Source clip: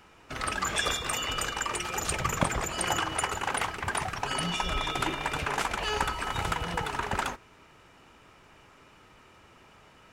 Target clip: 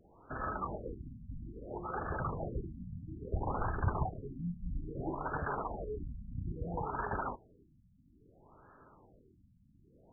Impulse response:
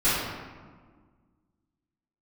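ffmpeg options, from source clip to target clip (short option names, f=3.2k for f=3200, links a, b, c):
-filter_complex "[0:a]aeval=exprs='0.0596*(abs(mod(val(0)/0.0596+3,4)-2)-1)':c=same,asettb=1/sr,asplit=3[a][b][c];[a]atrim=end=3.334[d];[b]atrim=start=3.33:end=4.05,asetpts=PTS-STARTPTS,afade=t=in:d=0.004:c=qsin,afade=t=out:st=0.716:d=0.004:c=qsin,aemphasis=mode=reproduction:type=bsi[e];[c]atrim=start=4.046[f];[d][e]acrossfade=d=0.004:c1=hsin:c2=qsin[g];[g][f]acrossfade=d=0.004:c1=qsin:c2=hsin,afftfilt=real='re*lt(b*sr/1024,250*pow(1800/250,0.5+0.5*sin(2*PI*0.6*pts/sr)))':imag='im*lt(b*sr/1024,250*pow(1800/250,0.5+0.5*sin(2*PI*0.6*pts/sr)))':win_size=1024:overlap=0.75,volume=-2.5dB"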